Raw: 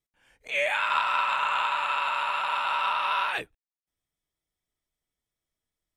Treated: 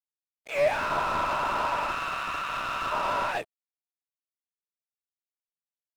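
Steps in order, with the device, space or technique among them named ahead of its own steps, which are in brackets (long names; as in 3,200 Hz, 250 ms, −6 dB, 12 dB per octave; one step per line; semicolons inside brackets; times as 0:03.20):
0:01.91–0:02.92: elliptic high-pass filter 1,100 Hz
early transistor amplifier (dead-zone distortion −47.5 dBFS; slew-rate limiting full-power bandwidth 57 Hz)
parametric band 650 Hz +10.5 dB 0.58 octaves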